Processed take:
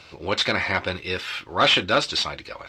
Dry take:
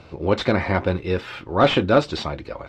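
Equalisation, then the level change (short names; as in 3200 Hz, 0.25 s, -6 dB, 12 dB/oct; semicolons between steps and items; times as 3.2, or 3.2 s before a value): tilt shelf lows -10 dB, about 1200 Hz; 0.0 dB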